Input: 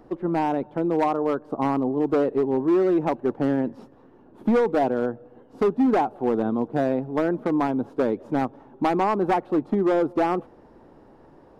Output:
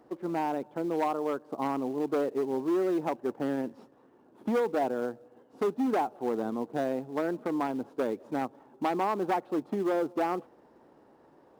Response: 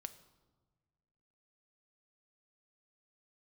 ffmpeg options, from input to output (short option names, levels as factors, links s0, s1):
-filter_complex "[0:a]highpass=f=260:p=1,asplit=2[s0][s1];[s1]acrusher=bits=3:mode=log:mix=0:aa=0.000001,volume=0.299[s2];[s0][s2]amix=inputs=2:normalize=0,volume=0.398"